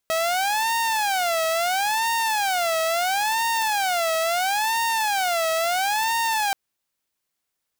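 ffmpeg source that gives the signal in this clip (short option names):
-f lavfi -i "aevalsrc='0.126*(2*mod((783.5*t-137.5/(2*PI*0.74)*sin(2*PI*0.74*t)),1)-1)':d=6.43:s=44100"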